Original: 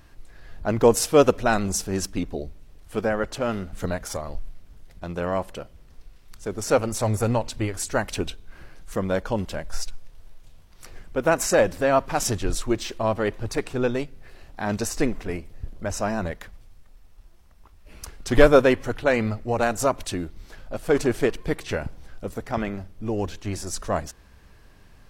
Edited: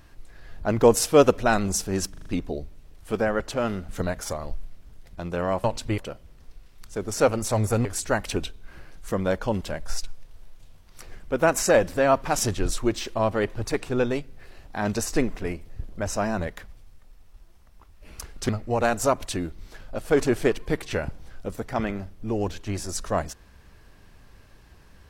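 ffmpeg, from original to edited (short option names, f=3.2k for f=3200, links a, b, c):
-filter_complex "[0:a]asplit=9[a][b][c][d][e][f][g][h][i];[a]atrim=end=2.142[j];[b]atrim=start=2.098:end=2.142[k];[c]atrim=start=2.098:end=2.142[l];[d]atrim=start=2.098:end=2.142[m];[e]atrim=start=2.098:end=5.482[n];[f]atrim=start=7.348:end=7.692[o];[g]atrim=start=5.478:end=7.352[p];[h]atrim=start=7.688:end=18.332[q];[i]atrim=start=19.268[r];[j][k]acrossfade=d=0.004:c1=hsin:c2=hsin[s];[s][l]acrossfade=d=0.004:c1=hsin:c2=hsin[t];[t][m]acrossfade=d=0.004:c1=hsin:c2=hsin[u];[u][n]acrossfade=d=0.004:c1=hsin:c2=hsin[v];[v][o]acrossfade=d=0.004:c1=hsin:c2=hsin[w];[w][p]acrossfade=d=0.004:c1=hsin:c2=hsin[x];[x][q]acrossfade=d=0.004:c1=hsin:c2=hsin[y];[y][r]acrossfade=d=0.004:c1=hsin:c2=hsin"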